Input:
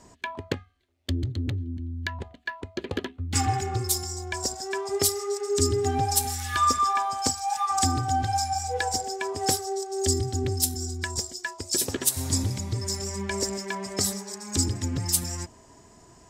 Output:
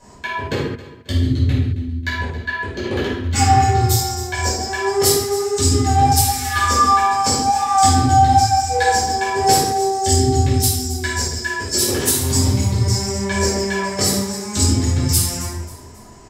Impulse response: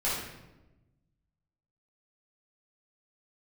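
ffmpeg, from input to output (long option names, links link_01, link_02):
-filter_complex "[0:a]asettb=1/sr,asplit=3[link_01][link_02][link_03];[link_01]atrim=end=3.154[link_04];[link_02]atrim=start=3.15:end=4.68,asetpts=PTS-STARTPTS,afade=type=in:duration=0.004:curve=qsin,afade=type=out:start_time=1.526:duration=0.004:curve=qsin,equalizer=frequency=10000:width_type=o:width=0.23:gain=-10.5[link_05];[link_03]atrim=start=4.676[link_06];[link_04][link_05]acrossfade=duration=0.004:curve1=hsin:curve2=qsin[link_07];[link_07][link_06]acrossfade=duration=0.004:curve1=qsin:curve2=hsin,aecho=1:1:270|540|810:0.141|0.0537|0.0204[link_08];[1:a]atrim=start_sample=2205,afade=type=out:start_time=0.28:duration=0.01,atrim=end_sample=12789[link_09];[link_08][link_09]afir=irnorm=-1:irlink=0,volume=1.5dB"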